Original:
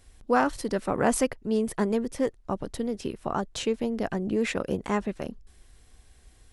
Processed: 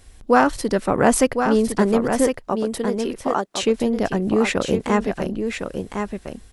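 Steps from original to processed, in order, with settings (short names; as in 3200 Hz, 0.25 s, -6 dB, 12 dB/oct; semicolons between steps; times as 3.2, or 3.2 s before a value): 2.27–3.63 HPF 310 Hz 12 dB/oct; echo 1.058 s -6.5 dB; gain +7.5 dB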